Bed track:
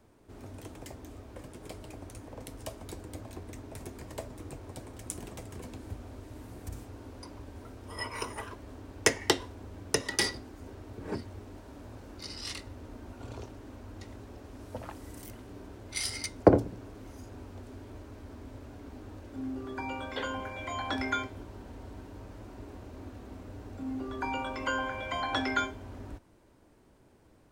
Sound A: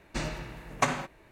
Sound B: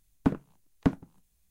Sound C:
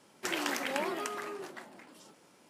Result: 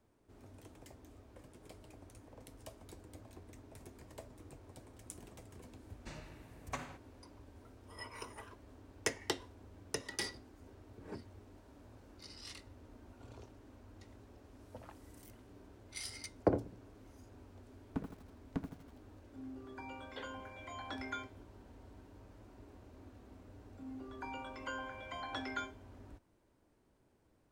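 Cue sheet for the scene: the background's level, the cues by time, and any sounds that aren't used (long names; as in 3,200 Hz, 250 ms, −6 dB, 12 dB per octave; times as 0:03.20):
bed track −11 dB
0:05.91: mix in A −16.5 dB
0:17.70: mix in B −14.5 dB + feedback echo at a low word length 81 ms, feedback 55%, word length 7 bits, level −8.5 dB
not used: C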